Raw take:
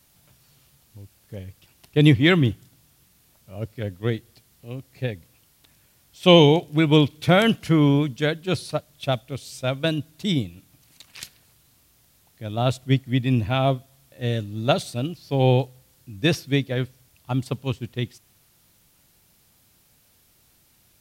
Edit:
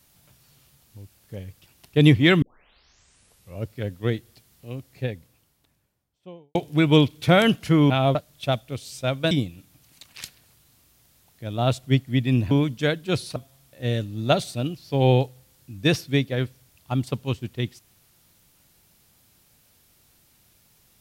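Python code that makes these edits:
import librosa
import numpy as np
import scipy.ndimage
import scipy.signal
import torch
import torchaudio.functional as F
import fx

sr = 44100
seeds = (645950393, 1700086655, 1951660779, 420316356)

y = fx.studio_fade_out(x, sr, start_s=4.74, length_s=1.81)
y = fx.edit(y, sr, fx.tape_start(start_s=2.42, length_s=1.2),
    fx.swap(start_s=7.9, length_s=0.85, other_s=13.5, other_length_s=0.25),
    fx.cut(start_s=9.91, length_s=0.39), tone=tone)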